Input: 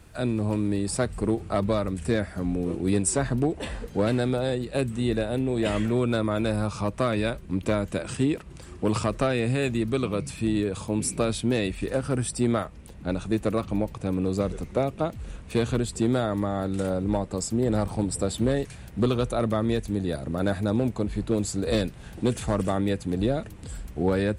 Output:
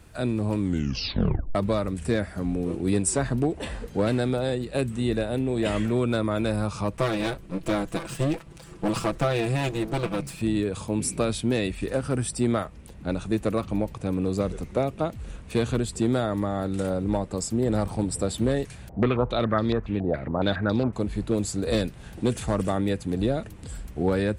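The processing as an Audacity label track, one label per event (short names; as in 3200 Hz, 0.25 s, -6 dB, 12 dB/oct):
0.580000	0.580000	tape stop 0.97 s
6.970000	10.420000	minimum comb delay 6 ms
18.890000	20.930000	stepped low-pass 7.2 Hz 720–4600 Hz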